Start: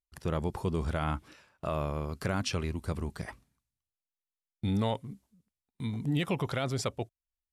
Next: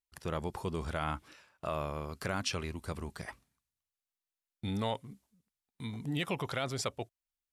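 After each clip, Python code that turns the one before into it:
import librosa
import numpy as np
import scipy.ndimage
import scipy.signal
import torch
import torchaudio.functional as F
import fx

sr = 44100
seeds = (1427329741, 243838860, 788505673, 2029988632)

y = fx.low_shelf(x, sr, hz=460.0, db=-7.0)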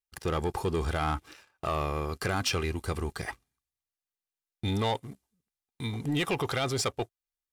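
y = x + 0.39 * np.pad(x, (int(2.5 * sr / 1000.0), 0))[:len(x)]
y = fx.leveller(y, sr, passes=2)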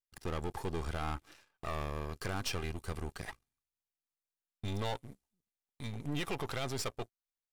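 y = np.where(x < 0.0, 10.0 ** (-12.0 / 20.0) * x, x)
y = y * 10.0 ** (-4.5 / 20.0)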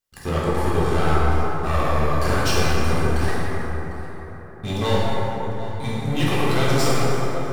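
y = x + 10.0 ** (-18.0 / 20.0) * np.pad(x, (int(751 * sr / 1000.0), 0))[:len(x)]
y = fx.rev_plate(y, sr, seeds[0], rt60_s=4.5, hf_ratio=0.35, predelay_ms=0, drr_db=-9.0)
y = y * 10.0 ** (8.0 / 20.0)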